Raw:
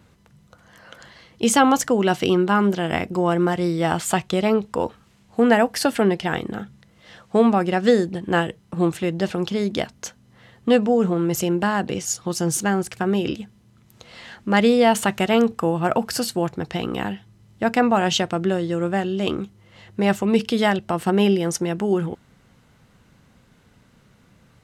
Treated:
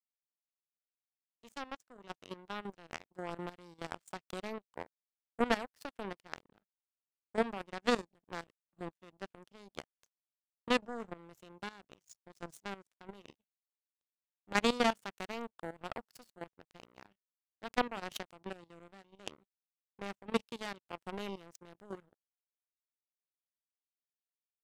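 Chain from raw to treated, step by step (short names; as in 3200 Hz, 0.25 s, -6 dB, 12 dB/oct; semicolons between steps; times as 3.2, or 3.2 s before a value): opening faded in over 3.14 s; power-law curve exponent 3; level quantiser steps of 14 dB; gain +1.5 dB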